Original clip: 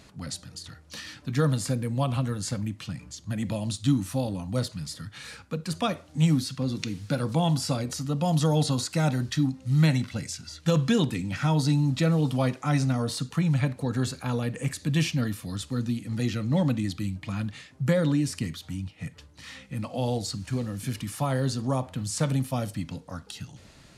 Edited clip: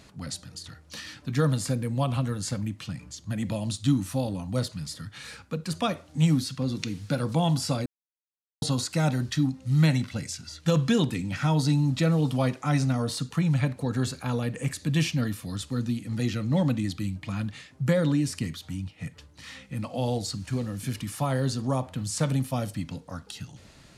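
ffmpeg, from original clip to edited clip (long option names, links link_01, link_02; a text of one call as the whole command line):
ffmpeg -i in.wav -filter_complex "[0:a]asplit=3[link_01][link_02][link_03];[link_01]atrim=end=7.86,asetpts=PTS-STARTPTS,afade=type=out:start_time=7.856:duration=0.004:curve=hsin[link_04];[link_02]atrim=start=7.86:end=8.62,asetpts=PTS-STARTPTS,volume=0[link_05];[link_03]atrim=start=8.62,asetpts=PTS-STARTPTS,afade=type=in:duration=0.004:curve=hsin[link_06];[link_04][link_05][link_06]concat=n=3:v=0:a=1" out.wav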